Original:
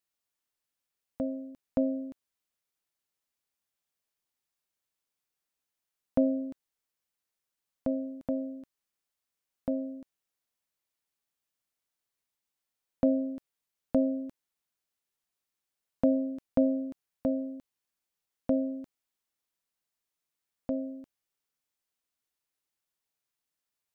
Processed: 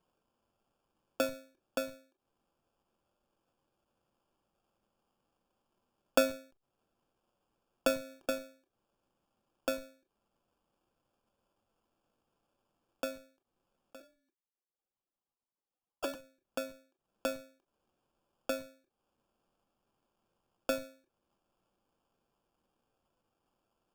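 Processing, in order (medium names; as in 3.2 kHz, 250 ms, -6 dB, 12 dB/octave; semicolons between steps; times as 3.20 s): 14.00–16.15 s: formants replaced by sine waves; high-pass 330 Hz 24 dB/octave; reverb removal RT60 0.62 s; in parallel at -9.5 dB: Schmitt trigger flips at -39.5 dBFS; on the sum: sample-and-hold 22×; on a send at -9 dB: reverberation, pre-delay 4 ms; on the sum: endings held to a fixed fall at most 140 dB/s; trim +7 dB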